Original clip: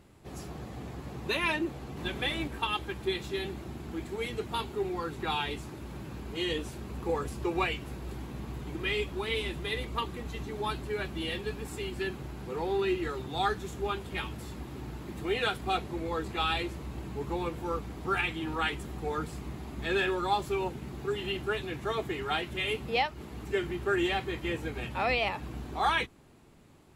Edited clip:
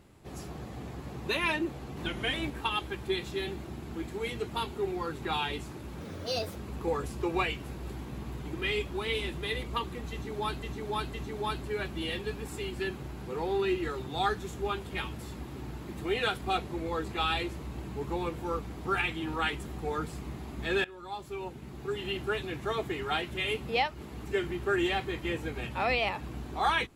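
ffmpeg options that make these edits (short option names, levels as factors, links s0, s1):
-filter_complex "[0:a]asplit=8[s0][s1][s2][s3][s4][s5][s6][s7];[s0]atrim=end=2.064[s8];[s1]atrim=start=2.06:end=2.31,asetpts=PTS-STARTPTS,asetrate=40131,aresample=44100,atrim=end_sample=12115,asetpts=PTS-STARTPTS[s9];[s2]atrim=start=2.306:end=5.984[s10];[s3]atrim=start=5.98:end=6.77,asetpts=PTS-STARTPTS,asetrate=63504,aresample=44100[s11];[s4]atrim=start=6.766:end=10.842[s12];[s5]atrim=start=10.328:end=10.842[s13];[s6]atrim=start=10.328:end=20.04,asetpts=PTS-STARTPTS,afade=t=out:st=9.708:d=0.004:c=hsin:silence=0.0891251[s14];[s7]atrim=start=20.04,asetpts=PTS-STARTPTS,afade=t=in:d=1.38:silence=0.0891251[s15];[s8][s9]acrossfade=d=0.004:c1=hsin:c2=hsin[s16];[s16][s10]acrossfade=d=0.004:c1=hsin:c2=hsin[s17];[s17][s11]acrossfade=d=0.004:c1=hsin:c2=hsin[s18];[s18][s12]acrossfade=d=0.004:c1=hsin:c2=hsin[s19];[s19][s13]acrossfade=d=0.004:c1=hsin:c2=hsin[s20];[s14][s15]concat=n=2:v=0:a=1[s21];[s20][s21]acrossfade=d=0.004:c1=hsin:c2=hsin"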